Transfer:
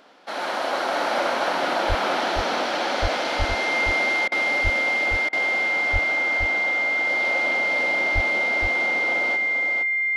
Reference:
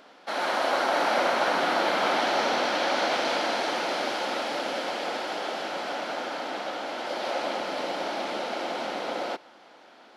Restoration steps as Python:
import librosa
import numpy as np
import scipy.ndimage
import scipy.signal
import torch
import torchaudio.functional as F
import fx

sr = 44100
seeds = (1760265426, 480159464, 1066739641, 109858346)

y = fx.notch(x, sr, hz=2100.0, q=30.0)
y = fx.fix_deplosive(y, sr, at_s=(1.88, 3.01, 3.38, 4.63, 5.92, 8.14))
y = fx.fix_interpolate(y, sr, at_s=(4.28, 5.29), length_ms=37.0)
y = fx.fix_echo_inverse(y, sr, delay_ms=468, level_db=-5.5)